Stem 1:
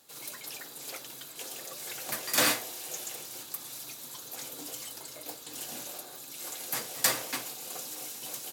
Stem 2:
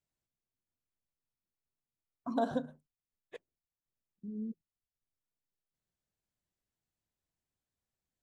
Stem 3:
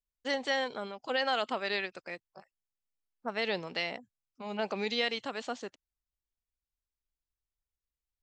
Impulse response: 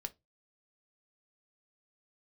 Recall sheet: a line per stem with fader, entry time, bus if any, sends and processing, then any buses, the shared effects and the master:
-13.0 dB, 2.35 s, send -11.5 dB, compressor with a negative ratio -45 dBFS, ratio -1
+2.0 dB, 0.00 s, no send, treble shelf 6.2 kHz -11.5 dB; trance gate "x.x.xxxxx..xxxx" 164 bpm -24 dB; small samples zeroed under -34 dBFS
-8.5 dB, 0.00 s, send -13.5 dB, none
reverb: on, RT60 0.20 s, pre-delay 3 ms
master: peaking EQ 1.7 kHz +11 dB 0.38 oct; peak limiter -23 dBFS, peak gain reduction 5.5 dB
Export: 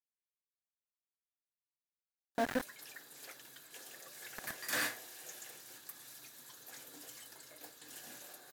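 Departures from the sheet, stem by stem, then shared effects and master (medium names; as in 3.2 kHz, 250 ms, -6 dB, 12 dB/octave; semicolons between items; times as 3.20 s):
stem 1: missing compressor with a negative ratio -45 dBFS, ratio -1; stem 3: muted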